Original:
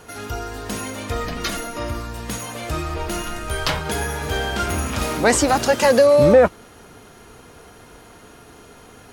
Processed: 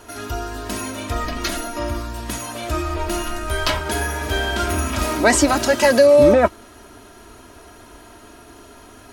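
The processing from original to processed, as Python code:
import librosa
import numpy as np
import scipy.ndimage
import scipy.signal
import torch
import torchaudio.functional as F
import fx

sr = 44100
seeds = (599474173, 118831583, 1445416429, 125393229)

y = x + 0.63 * np.pad(x, (int(3.1 * sr / 1000.0), 0))[:len(x)]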